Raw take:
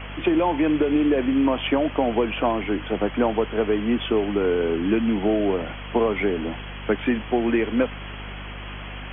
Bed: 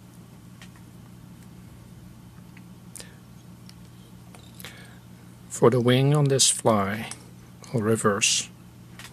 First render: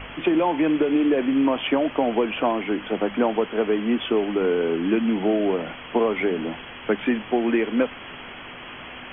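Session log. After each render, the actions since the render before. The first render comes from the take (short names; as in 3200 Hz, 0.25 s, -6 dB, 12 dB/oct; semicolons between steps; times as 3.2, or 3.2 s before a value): de-hum 50 Hz, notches 4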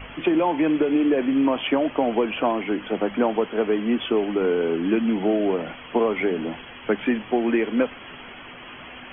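denoiser 6 dB, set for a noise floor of -39 dBFS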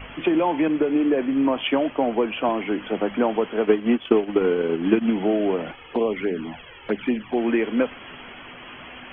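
0.68–2.49 three-band expander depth 70%; 3.64–5.13 transient shaper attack +7 dB, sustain -10 dB; 5.71–7.37 envelope flanger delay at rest 2.9 ms, full sweep at -16.5 dBFS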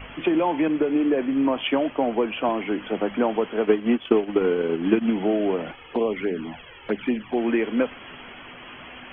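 gain -1 dB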